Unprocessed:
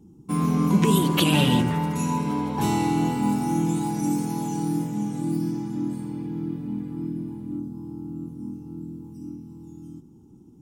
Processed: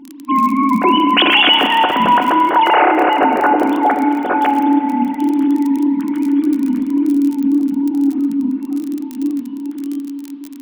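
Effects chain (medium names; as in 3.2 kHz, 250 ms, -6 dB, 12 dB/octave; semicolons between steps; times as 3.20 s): formants replaced by sine waves; hum notches 50/100/150/200/250 Hz; feedback comb 730 Hz, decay 0.25 s, mix 80%; compression 3:1, threshold -39 dBFS, peak gain reduction 9 dB; crackle 34 per s -57 dBFS; tilt EQ +3 dB/octave; spring tank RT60 2.9 s, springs 32 ms, chirp 55 ms, DRR 6 dB; loudness maximiser +31.5 dB; trim -1 dB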